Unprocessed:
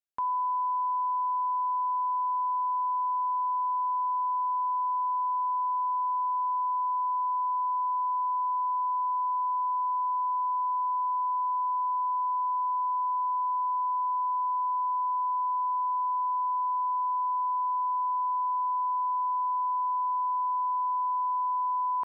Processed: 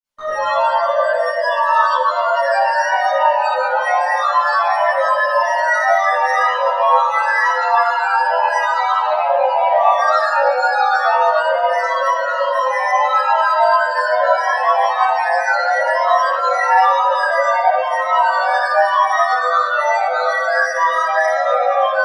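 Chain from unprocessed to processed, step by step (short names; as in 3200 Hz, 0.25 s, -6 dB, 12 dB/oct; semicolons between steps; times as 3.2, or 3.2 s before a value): soft clip -30.5 dBFS, distortion -16 dB; grains, grains 24/s, pitch spread up and down by 12 st; bell 940 Hz +5 dB 0.65 oct; reverb RT60 2.2 s, pre-delay 4 ms, DRR -18 dB; chorus voices 4, 0.37 Hz, delay 18 ms, depth 1.6 ms; gain -1 dB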